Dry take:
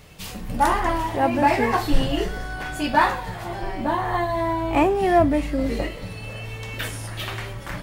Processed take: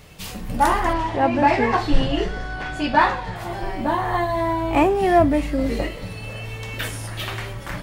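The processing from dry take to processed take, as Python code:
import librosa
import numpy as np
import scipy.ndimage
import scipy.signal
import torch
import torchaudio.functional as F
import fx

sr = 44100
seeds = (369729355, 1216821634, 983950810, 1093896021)

y = fx.lowpass(x, sr, hz=5500.0, slope=12, at=(0.93, 3.36))
y = F.gain(torch.from_numpy(y), 1.5).numpy()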